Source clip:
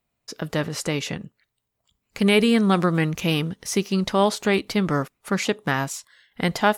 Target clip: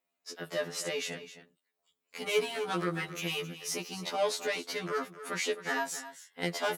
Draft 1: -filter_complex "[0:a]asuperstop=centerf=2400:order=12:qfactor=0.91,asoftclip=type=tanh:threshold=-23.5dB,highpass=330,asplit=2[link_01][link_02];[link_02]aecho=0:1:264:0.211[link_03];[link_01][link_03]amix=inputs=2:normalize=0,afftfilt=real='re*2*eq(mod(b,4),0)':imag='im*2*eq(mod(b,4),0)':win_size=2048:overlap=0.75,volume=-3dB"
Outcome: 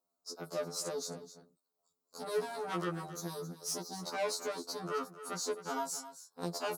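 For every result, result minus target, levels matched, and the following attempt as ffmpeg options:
2,000 Hz band −6.0 dB; soft clipping: distortion +5 dB
-filter_complex "[0:a]asoftclip=type=tanh:threshold=-23.5dB,highpass=330,asplit=2[link_01][link_02];[link_02]aecho=0:1:264:0.211[link_03];[link_01][link_03]amix=inputs=2:normalize=0,afftfilt=real='re*2*eq(mod(b,4),0)':imag='im*2*eq(mod(b,4),0)':win_size=2048:overlap=0.75,volume=-3dB"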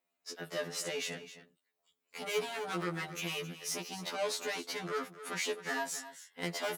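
soft clipping: distortion +6 dB
-filter_complex "[0:a]asoftclip=type=tanh:threshold=-16dB,highpass=330,asplit=2[link_01][link_02];[link_02]aecho=0:1:264:0.211[link_03];[link_01][link_03]amix=inputs=2:normalize=0,afftfilt=real='re*2*eq(mod(b,4),0)':imag='im*2*eq(mod(b,4),0)':win_size=2048:overlap=0.75,volume=-3dB"

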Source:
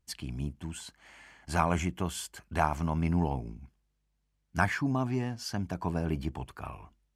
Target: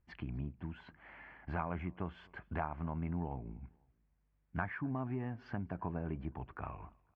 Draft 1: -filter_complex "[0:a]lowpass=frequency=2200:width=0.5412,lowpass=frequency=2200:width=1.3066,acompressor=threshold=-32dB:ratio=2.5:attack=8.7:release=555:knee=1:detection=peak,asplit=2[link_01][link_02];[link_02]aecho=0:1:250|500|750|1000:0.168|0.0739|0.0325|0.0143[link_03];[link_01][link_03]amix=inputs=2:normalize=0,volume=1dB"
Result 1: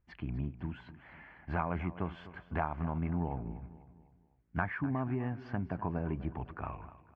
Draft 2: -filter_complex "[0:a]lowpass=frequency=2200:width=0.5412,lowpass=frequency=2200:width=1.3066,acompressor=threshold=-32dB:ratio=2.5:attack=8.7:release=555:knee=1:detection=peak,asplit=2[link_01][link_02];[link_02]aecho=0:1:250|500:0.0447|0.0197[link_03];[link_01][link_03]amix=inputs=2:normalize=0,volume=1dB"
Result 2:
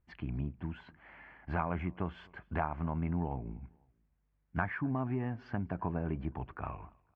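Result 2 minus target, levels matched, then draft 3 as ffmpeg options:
downward compressor: peak gain reduction −4 dB
-filter_complex "[0:a]lowpass=frequency=2200:width=0.5412,lowpass=frequency=2200:width=1.3066,acompressor=threshold=-39dB:ratio=2.5:attack=8.7:release=555:knee=1:detection=peak,asplit=2[link_01][link_02];[link_02]aecho=0:1:250|500:0.0447|0.0197[link_03];[link_01][link_03]amix=inputs=2:normalize=0,volume=1dB"

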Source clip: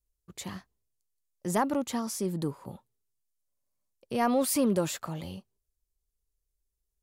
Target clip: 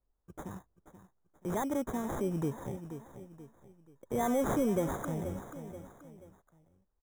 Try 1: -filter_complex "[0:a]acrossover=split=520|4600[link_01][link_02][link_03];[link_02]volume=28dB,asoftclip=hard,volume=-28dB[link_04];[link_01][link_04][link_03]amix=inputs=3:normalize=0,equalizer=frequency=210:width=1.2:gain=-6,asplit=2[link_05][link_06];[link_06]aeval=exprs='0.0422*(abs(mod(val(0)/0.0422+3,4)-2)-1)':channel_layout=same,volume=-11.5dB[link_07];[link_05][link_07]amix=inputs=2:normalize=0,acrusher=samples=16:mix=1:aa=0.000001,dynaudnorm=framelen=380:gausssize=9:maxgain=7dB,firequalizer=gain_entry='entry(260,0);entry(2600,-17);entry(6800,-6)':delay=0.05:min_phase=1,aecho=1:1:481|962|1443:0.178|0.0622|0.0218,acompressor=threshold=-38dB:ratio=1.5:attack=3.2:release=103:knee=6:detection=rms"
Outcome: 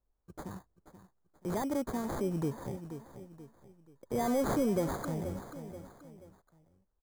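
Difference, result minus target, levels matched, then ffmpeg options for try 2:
gain into a clipping stage and back: distortion +14 dB; 4,000 Hz band +3.0 dB
-filter_complex "[0:a]acrossover=split=520|4600[link_01][link_02][link_03];[link_02]volume=20dB,asoftclip=hard,volume=-20dB[link_04];[link_01][link_04][link_03]amix=inputs=3:normalize=0,equalizer=frequency=210:width=1.2:gain=-6,asplit=2[link_05][link_06];[link_06]aeval=exprs='0.0422*(abs(mod(val(0)/0.0422+3,4)-2)-1)':channel_layout=same,volume=-11.5dB[link_07];[link_05][link_07]amix=inputs=2:normalize=0,acrusher=samples=16:mix=1:aa=0.000001,dynaudnorm=framelen=380:gausssize=9:maxgain=7dB,firequalizer=gain_entry='entry(260,0);entry(2600,-17);entry(6800,-6)':delay=0.05:min_phase=1,aecho=1:1:481|962|1443:0.178|0.0622|0.0218,acompressor=threshold=-38dB:ratio=1.5:attack=3.2:release=103:knee=6:detection=rms,asuperstop=centerf=4500:order=20:qfactor=3.4"

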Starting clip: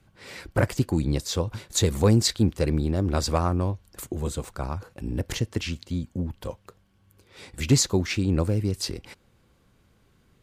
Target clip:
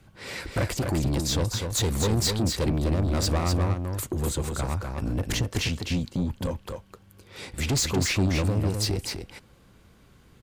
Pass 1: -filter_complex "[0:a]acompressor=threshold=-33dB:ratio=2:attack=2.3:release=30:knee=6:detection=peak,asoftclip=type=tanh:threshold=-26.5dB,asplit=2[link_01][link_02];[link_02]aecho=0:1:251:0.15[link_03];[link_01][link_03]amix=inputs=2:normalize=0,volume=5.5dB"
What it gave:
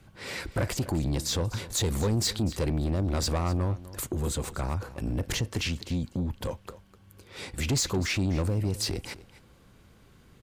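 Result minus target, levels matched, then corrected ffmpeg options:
echo-to-direct −11.5 dB; downward compressor: peak gain reduction +4.5 dB
-filter_complex "[0:a]acompressor=threshold=-24dB:ratio=2:attack=2.3:release=30:knee=6:detection=peak,asoftclip=type=tanh:threshold=-26.5dB,asplit=2[link_01][link_02];[link_02]aecho=0:1:251:0.562[link_03];[link_01][link_03]amix=inputs=2:normalize=0,volume=5.5dB"

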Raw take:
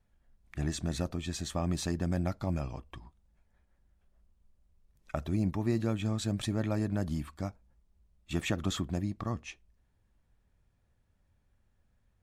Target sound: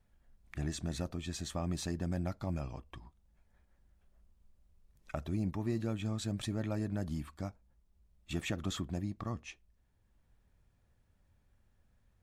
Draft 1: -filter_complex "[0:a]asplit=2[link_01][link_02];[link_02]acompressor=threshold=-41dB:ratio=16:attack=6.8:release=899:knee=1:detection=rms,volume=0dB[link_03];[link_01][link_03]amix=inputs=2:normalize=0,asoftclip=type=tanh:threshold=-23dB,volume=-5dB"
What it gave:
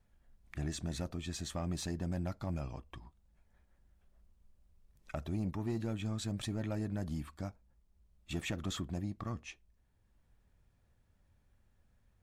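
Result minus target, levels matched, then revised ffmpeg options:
soft clipping: distortion +10 dB
-filter_complex "[0:a]asplit=2[link_01][link_02];[link_02]acompressor=threshold=-41dB:ratio=16:attack=6.8:release=899:knee=1:detection=rms,volume=0dB[link_03];[link_01][link_03]amix=inputs=2:normalize=0,asoftclip=type=tanh:threshold=-16.5dB,volume=-5dB"

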